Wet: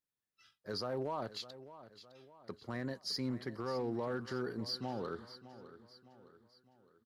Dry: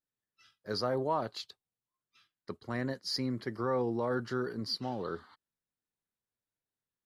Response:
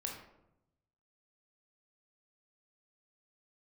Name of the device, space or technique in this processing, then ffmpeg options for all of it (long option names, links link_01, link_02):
limiter into clipper: -af "alimiter=level_in=2.5dB:limit=-24dB:level=0:latency=1:release=77,volume=-2.5dB,asoftclip=type=hard:threshold=-28dB,aecho=1:1:610|1220|1830|2440:0.178|0.0818|0.0376|0.0173,volume=-2.5dB"